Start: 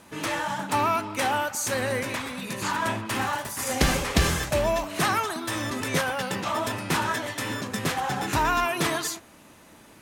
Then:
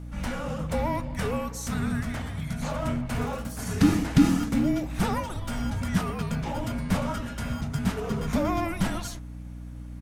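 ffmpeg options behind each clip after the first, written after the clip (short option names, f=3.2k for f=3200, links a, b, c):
-af "firequalizer=gain_entry='entry(200,0);entry(430,-7);entry(630,-9);entry(3700,-13)':delay=0.05:min_phase=1,afreqshift=-350,aeval=exprs='val(0)+0.00794*(sin(2*PI*60*n/s)+sin(2*PI*2*60*n/s)/2+sin(2*PI*3*60*n/s)/3+sin(2*PI*4*60*n/s)/4+sin(2*PI*5*60*n/s)/5)':c=same,volume=4.5dB"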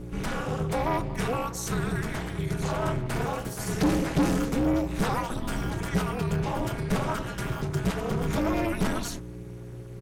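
-af "aecho=1:1:6.2:0.94,tremolo=f=240:d=0.947,asoftclip=type=tanh:threshold=-21.5dB,volume=4dB"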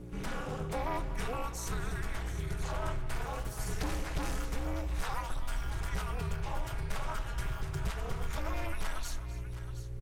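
-filter_complex "[0:a]asubboost=boost=11:cutoff=62,acrossover=split=700[a][b];[a]acompressor=threshold=-24dB:ratio=6[c];[b]aecho=1:1:256|719:0.168|0.224[d];[c][d]amix=inputs=2:normalize=0,volume=-7dB"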